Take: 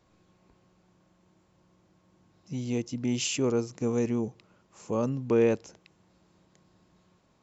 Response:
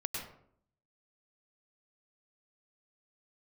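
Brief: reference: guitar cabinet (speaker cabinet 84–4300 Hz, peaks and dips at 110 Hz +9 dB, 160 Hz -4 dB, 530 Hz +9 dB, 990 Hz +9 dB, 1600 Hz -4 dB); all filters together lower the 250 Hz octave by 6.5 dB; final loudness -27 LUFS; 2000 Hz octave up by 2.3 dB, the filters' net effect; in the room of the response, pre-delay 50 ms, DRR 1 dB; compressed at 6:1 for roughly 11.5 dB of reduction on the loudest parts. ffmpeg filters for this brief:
-filter_complex "[0:a]equalizer=f=250:t=o:g=-8.5,equalizer=f=2k:t=o:g=4,acompressor=threshold=-34dB:ratio=6,asplit=2[a][b];[1:a]atrim=start_sample=2205,adelay=50[c];[b][c]afir=irnorm=-1:irlink=0,volume=-3dB[d];[a][d]amix=inputs=2:normalize=0,highpass=84,equalizer=f=110:t=q:w=4:g=9,equalizer=f=160:t=q:w=4:g=-4,equalizer=f=530:t=q:w=4:g=9,equalizer=f=990:t=q:w=4:g=9,equalizer=f=1.6k:t=q:w=4:g=-4,lowpass=f=4.3k:w=0.5412,lowpass=f=4.3k:w=1.3066,volume=5.5dB"

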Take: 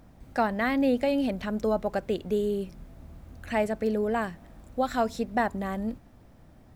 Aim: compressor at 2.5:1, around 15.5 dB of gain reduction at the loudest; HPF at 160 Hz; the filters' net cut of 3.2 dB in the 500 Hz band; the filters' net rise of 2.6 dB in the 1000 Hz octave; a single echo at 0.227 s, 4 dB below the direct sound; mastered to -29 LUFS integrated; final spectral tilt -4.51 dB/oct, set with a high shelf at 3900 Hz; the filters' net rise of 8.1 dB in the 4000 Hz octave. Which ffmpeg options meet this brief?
-af "highpass=160,equalizer=f=500:t=o:g=-6,equalizer=f=1k:t=o:g=5.5,highshelf=f=3.9k:g=6,equalizer=f=4k:t=o:g=6.5,acompressor=threshold=-44dB:ratio=2.5,aecho=1:1:227:0.631,volume=12dB"

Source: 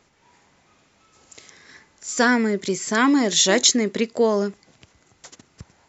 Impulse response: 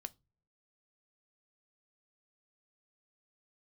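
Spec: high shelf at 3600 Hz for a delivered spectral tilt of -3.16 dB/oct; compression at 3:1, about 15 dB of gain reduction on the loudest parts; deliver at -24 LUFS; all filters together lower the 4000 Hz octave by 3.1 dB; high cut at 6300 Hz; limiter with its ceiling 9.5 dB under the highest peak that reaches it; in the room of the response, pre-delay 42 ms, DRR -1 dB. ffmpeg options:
-filter_complex "[0:a]lowpass=6.3k,highshelf=f=3.6k:g=4.5,equalizer=f=4k:t=o:g=-6,acompressor=threshold=-35dB:ratio=3,alimiter=level_in=3.5dB:limit=-24dB:level=0:latency=1,volume=-3.5dB,asplit=2[a][b];[1:a]atrim=start_sample=2205,adelay=42[c];[b][c]afir=irnorm=-1:irlink=0,volume=5dB[d];[a][d]amix=inputs=2:normalize=0,volume=10dB"

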